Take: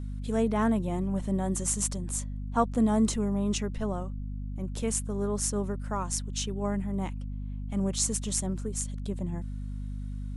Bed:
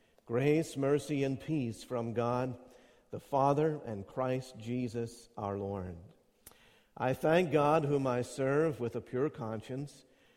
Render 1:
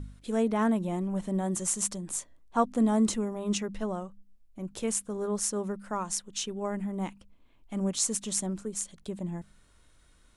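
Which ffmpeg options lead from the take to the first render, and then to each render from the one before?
-af "bandreject=f=50:t=h:w=4,bandreject=f=100:t=h:w=4,bandreject=f=150:t=h:w=4,bandreject=f=200:t=h:w=4,bandreject=f=250:t=h:w=4"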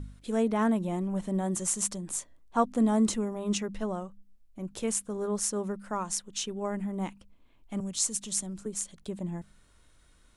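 -filter_complex "[0:a]asettb=1/sr,asplit=3[s0][s1][s2];[s0]atrim=end=7.804[s3];[s1]atrim=start=7.8:end=8.66,asetpts=PTS-STARTPTS,afade=t=in:d=0.004:c=qsin,afade=t=out:st=0.856:d=0.004:c=qsin,acrossover=split=160|3000[s4][s5][s6];[s5]acompressor=threshold=0.00355:ratio=2:attack=3.2:release=140:knee=2.83:detection=peak[s7];[s4][s7][s6]amix=inputs=3:normalize=0[s8];[s2]atrim=start=8.656[s9];[s3][s8]acrossfade=d=0.004:c1=hsin:c2=qsin[s10];[s10][s9]acrossfade=d=0.004:c1=qsin:c2=hsin"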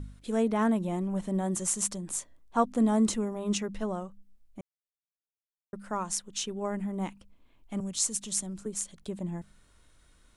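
-filter_complex "[0:a]asplit=3[s0][s1][s2];[s0]atrim=end=4.61,asetpts=PTS-STARTPTS,afade=t=out:st=4.606:d=0.004:c=hsin[s3];[s1]atrim=start=4.61:end=5.73,asetpts=PTS-STARTPTS,volume=0[s4];[s2]atrim=start=5.73,asetpts=PTS-STARTPTS,afade=t=in:d=0.004:c=hsin[s5];[s3][s4][s5]concat=n=3:v=0:a=1"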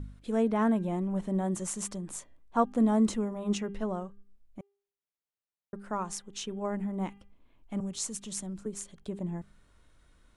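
-af "highshelf=f=3600:g=-8.5,bandreject=f=400:t=h:w=4,bandreject=f=800:t=h:w=4,bandreject=f=1200:t=h:w=4,bandreject=f=1600:t=h:w=4,bandreject=f=2000:t=h:w=4,bandreject=f=2400:t=h:w=4,bandreject=f=2800:t=h:w=4,bandreject=f=3200:t=h:w=4"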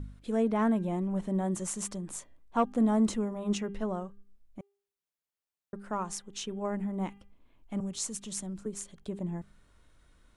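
-af "asoftclip=type=tanh:threshold=0.178"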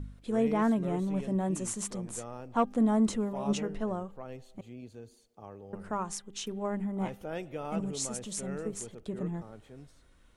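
-filter_complex "[1:a]volume=0.299[s0];[0:a][s0]amix=inputs=2:normalize=0"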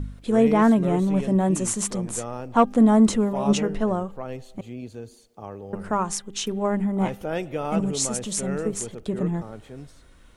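-af "volume=2.99"

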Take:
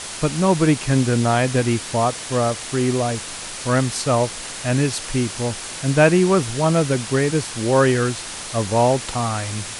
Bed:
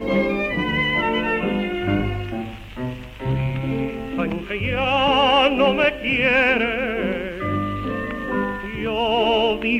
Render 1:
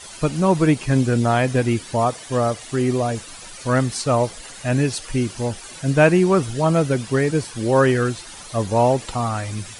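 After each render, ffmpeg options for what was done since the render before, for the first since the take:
-af "afftdn=nr=12:nf=-32"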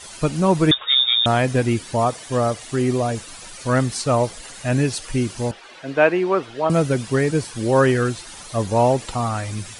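-filter_complex "[0:a]asettb=1/sr,asplit=3[s0][s1][s2];[s0]atrim=end=0.714[s3];[s1]atrim=start=0.71:end=1.26,asetpts=PTS-STARTPTS,afade=t=in:d=0.004:c=qsin,afade=t=out:st=0.546:d=0.004:c=qsin,lowpass=f=3200:t=q:w=0.5098,lowpass=f=3200:t=q:w=0.6013,lowpass=f=3200:t=q:w=0.9,lowpass=f=3200:t=q:w=2.563,afreqshift=-3800[s4];[s2]atrim=start=1.256[s5];[s3][s4]acrossfade=d=0.004:c1=hsin:c2=qsin[s6];[s6][s5]acrossfade=d=0.004:c1=qsin:c2=hsin,asettb=1/sr,asplit=3[s7][s8][s9];[s7]atrim=end=5.514[s10];[s8]atrim=start=5.51:end=6.7,asetpts=PTS-STARTPTS,afade=t=in:d=0.004:c=qsin,afade=t=out:st=1.186:d=0.004:c=qsin,acrossover=split=300 4100:gain=0.112 1 0.0794[s11][s12][s13];[s11][s12][s13]amix=inputs=3:normalize=0[s14];[s9]atrim=start=6.696[s15];[s10][s14]acrossfade=d=0.004:c1=hsin:c2=qsin[s16];[s16][s15]acrossfade=d=0.004:c1=qsin:c2=hsin"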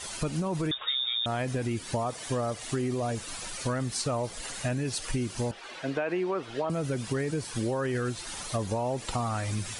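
-af "alimiter=limit=0.211:level=0:latency=1:release=25,acompressor=threshold=0.0447:ratio=6"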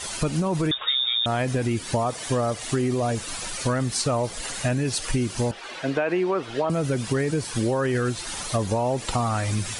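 -af "volume=2"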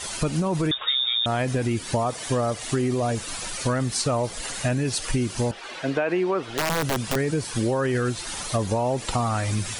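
-filter_complex "[0:a]asettb=1/sr,asplit=3[s0][s1][s2];[s0]atrim=end=6.524[s3];[s1]atrim=start=6.52:end=7.16,asetpts=PTS-STARTPTS,afade=t=in:d=0.004:c=qsin,afade=t=out:st=0.636:d=0.004:c=qsin,aeval=exprs='(mod(7.5*val(0)+1,2)-1)/7.5':c=same[s4];[s2]atrim=start=7.156[s5];[s3][s4]acrossfade=d=0.004:c1=hsin:c2=qsin[s6];[s6][s5]acrossfade=d=0.004:c1=qsin:c2=hsin"

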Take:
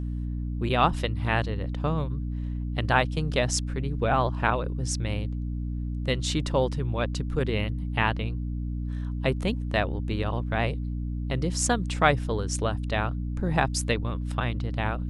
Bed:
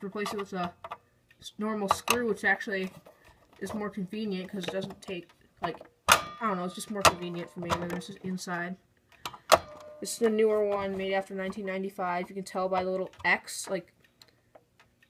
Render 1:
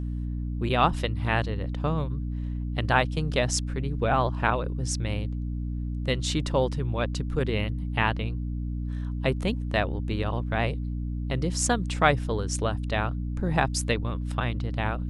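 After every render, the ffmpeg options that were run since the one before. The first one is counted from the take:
-af anull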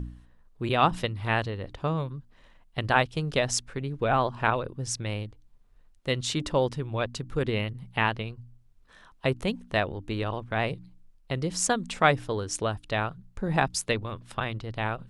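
-af "bandreject=f=60:t=h:w=4,bandreject=f=120:t=h:w=4,bandreject=f=180:t=h:w=4,bandreject=f=240:t=h:w=4,bandreject=f=300:t=h:w=4"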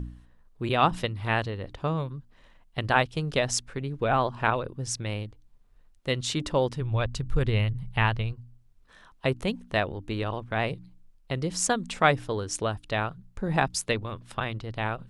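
-filter_complex "[0:a]asplit=3[s0][s1][s2];[s0]afade=t=out:st=6.8:d=0.02[s3];[s1]asubboost=boost=5:cutoff=110,afade=t=in:st=6.8:d=0.02,afade=t=out:st=8.32:d=0.02[s4];[s2]afade=t=in:st=8.32:d=0.02[s5];[s3][s4][s5]amix=inputs=3:normalize=0"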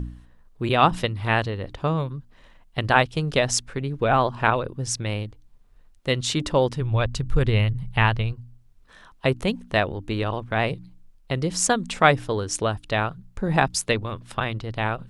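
-af "volume=1.68"

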